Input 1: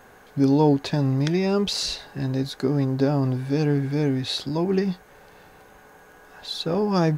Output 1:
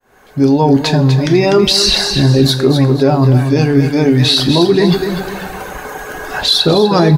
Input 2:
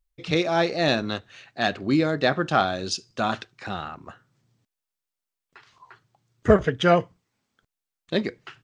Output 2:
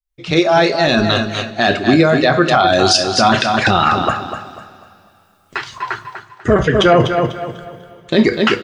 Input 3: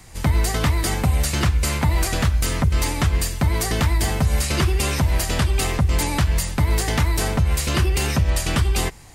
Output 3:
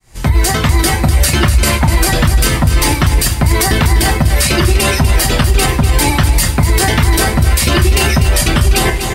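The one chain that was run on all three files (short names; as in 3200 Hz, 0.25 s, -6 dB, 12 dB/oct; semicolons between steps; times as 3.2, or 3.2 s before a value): opening faded in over 2.53 s; dynamic EQ 6800 Hz, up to -6 dB, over -47 dBFS, Q 4; reverse; compressor 8:1, threshold -31 dBFS; reverse; reverb removal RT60 1.9 s; on a send: feedback echo 0.247 s, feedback 32%, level -9 dB; on the sum: two-slope reverb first 0.27 s, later 2.9 s, from -21 dB, DRR 7 dB; maximiser +27.5 dB; gain -1 dB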